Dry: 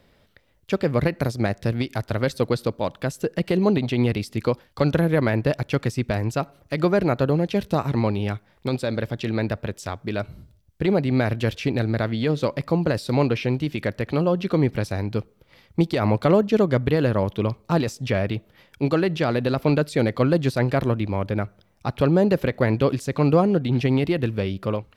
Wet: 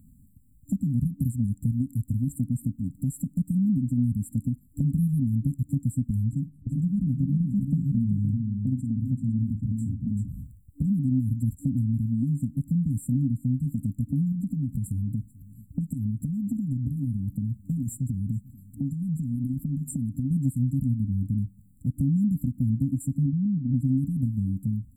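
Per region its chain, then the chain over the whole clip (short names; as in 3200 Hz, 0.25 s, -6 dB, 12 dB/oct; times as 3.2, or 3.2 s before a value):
6.28–10.28 LPF 2900 Hz 6 dB/oct + tapped delay 48/387/508 ms -12/-6/-16.5 dB + mismatched tape noise reduction decoder only
14.32–20.31 compressor, threshold -24 dBFS + echo 0.438 s -24 dB
23.26–23.74 running mean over 48 samples + low shelf 270 Hz -5 dB
whole clip: FFT band-reject 280–7200 Hz; compressor 2:1, threshold -36 dBFS; gain +7.5 dB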